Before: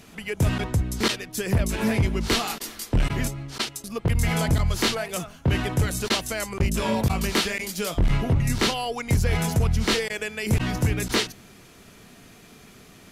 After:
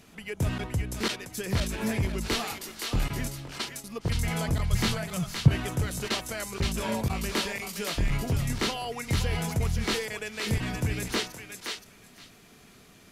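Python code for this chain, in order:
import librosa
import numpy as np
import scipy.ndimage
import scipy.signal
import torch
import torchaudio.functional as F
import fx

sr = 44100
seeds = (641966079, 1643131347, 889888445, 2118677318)

y = fx.low_shelf_res(x, sr, hz=220.0, db=11.0, q=1.5, at=(4.72, 5.48))
y = fx.echo_thinned(y, sr, ms=520, feedback_pct=16, hz=930.0, wet_db=-4.0)
y = F.gain(torch.from_numpy(y), -6.0).numpy()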